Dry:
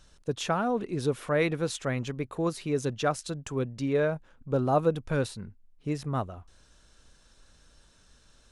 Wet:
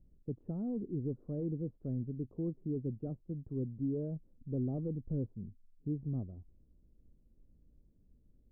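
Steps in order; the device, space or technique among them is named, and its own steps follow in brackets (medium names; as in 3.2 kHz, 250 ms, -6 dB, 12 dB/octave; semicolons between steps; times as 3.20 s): overdriven synthesiser ladder filter (saturation -21.5 dBFS, distortion -14 dB; four-pole ladder low-pass 400 Hz, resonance 20%); trim +1 dB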